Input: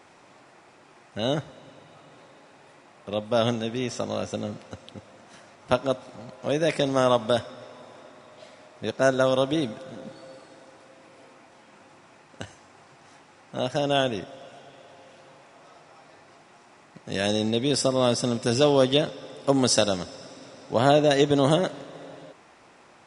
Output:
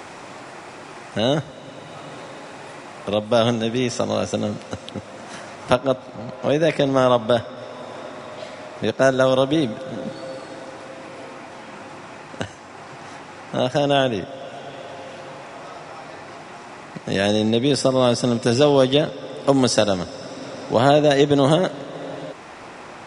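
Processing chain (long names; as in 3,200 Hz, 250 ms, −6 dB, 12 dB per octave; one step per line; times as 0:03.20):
high-shelf EQ 5,100 Hz +2 dB, from 0:05.75 −11.5 dB, from 0:07.57 −4.5 dB
multiband upward and downward compressor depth 40%
level +6 dB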